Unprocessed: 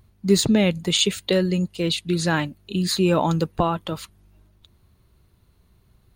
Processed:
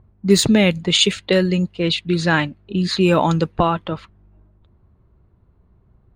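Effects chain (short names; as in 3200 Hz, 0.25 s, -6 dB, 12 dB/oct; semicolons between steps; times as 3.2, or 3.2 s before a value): low-pass opened by the level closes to 1100 Hz, open at -14 dBFS; dynamic EQ 2000 Hz, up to +4 dB, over -36 dBFS, Q 1; gain +3.5 dB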